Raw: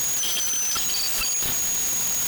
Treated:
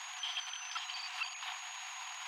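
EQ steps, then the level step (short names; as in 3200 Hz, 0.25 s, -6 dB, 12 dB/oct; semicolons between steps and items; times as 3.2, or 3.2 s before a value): rippled Chebyshev high-pass 710 Hz, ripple 6 dB; Bessel low-pass 1900 Hz, order 2; -1.5 dB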